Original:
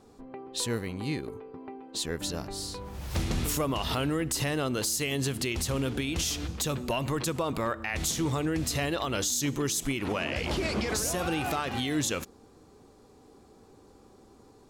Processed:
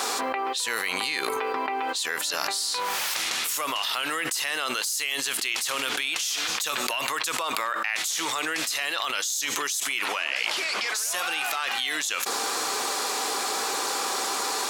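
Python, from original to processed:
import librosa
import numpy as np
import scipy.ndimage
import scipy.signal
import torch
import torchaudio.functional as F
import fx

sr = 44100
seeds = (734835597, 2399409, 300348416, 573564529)

y = scipy.signal.sosfilt(scipy.signal.butter(2, 1300.0, 'highpass', fs=sr, output='sos'), x)
y = fx.env_flatten(y, sr, amount_pct=100)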